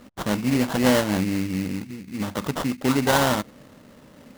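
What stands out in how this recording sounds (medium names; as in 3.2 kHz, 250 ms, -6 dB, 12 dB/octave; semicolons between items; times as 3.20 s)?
aliases and images of a low sample rate 2.4 kHz, jitter 20%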